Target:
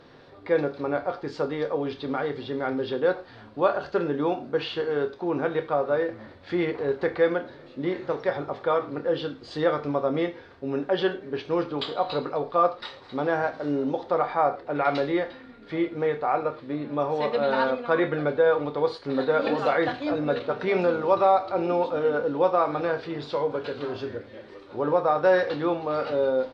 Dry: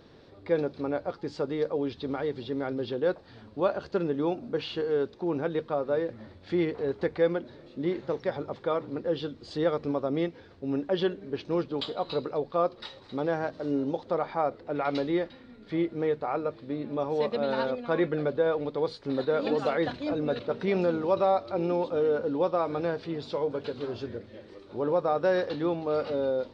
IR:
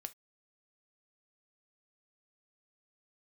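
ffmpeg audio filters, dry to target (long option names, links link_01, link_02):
-filter_complex "[0:a]equalizer=frequency=1300:width_type=o:width=3:gain=8.5,asplit=2[link_01][link_02];[link_02]adelay=27,volume=-12dB[link_03];[link_01][link_03]amix=inputs=2:normalize=0[link_04];[1:a]atrim=start_sample=2205,asetrate=27342,aresample=44100[link_05];[link_04][link_05]afir=irnorm=-1:irlink=0"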